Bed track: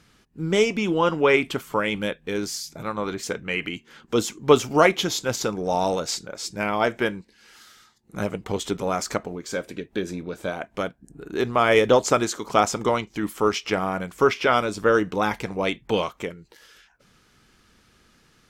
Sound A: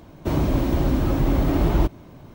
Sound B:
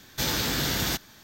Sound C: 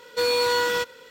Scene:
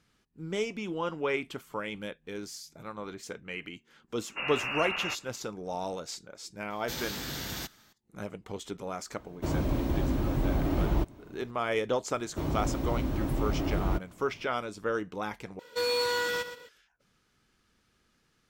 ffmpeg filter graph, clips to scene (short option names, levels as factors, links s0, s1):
-filter_complex "[2:a]asplit=2[s0][s1];[1:a]asplit=2[s2][s3];[0:a]volume=0.251[s4];[s0]lowpass=f=2500:t=q:w=0.5098,lowpass=f=2500:t=q:w=0.6013,lowpass=f=2500:t=q:w=0.9,lowpass=f=2500:t=q:w=2.563,afreqshift=-2900[s5];[3:a]aecho=1:1:123|246|369:0.282|0.0733|0.0191[s6];[s4]asplit=2[s7][s8];[s7]atrim=end=15.594[s9];[s6]atrim=end=1.1,asetpts=PTS-STARTPTS,volume=0.473[s10];[s8]atrim=start=16.686[s11];[s5]atrim=end=1.23,asetpts=PTS-STARTPTS,volume=0.631,afade=t=in:d=0.004:c=hsin,afade=t=out:st=1.226:d=0.004:c=hsin,adelay=4180[s12];[s1]atrim=end=1.23,asetpts=PTS-STARTPTS,volume=0.316,afade=t=in:d=0.004:c=hsin,afade=t=out:st=1.226:d=0.004:c=hsin,adelay=6700[s13];[s2]atrim=end=2.34,asetpts=PTS-STARTPTS,volume=0.398,afade=t=in:d=0.004:c=hsin,afade=t=out:st=2.336:d=0.004:c=hsin,adelay=9170[s14];[s3]atrim=end=2.34,asetpts=PTS-STARTPTS,volume=0.316,afade=t=in:d=0.004:c=hsin,afade=t=out:st=2.336:d=0.004:c=hsin,adelay=12110[s15];[s9][s10]acrossfade=d=0.004:c1=hsin:c2=hsin[s16];[s16][s11]acrossfade=d=0.004:c1=hsin:c2=hsin[s17];[s17][s12][s13][s14][s15]amix=inputs=5:normalize=0"